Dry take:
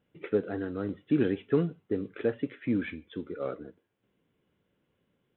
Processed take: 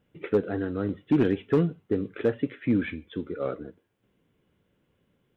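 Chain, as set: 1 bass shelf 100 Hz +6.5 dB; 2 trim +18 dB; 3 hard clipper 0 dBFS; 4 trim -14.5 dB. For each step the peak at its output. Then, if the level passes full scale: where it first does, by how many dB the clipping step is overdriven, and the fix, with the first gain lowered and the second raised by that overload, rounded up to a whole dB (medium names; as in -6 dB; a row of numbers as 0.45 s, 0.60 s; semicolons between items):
-13.0 dBFS, +5.0 dBFS, 0.0 dBFS, -14.5 dBFS; step 2, 5.0 dB; step 2 +13 dB, step 4 -9.5 dB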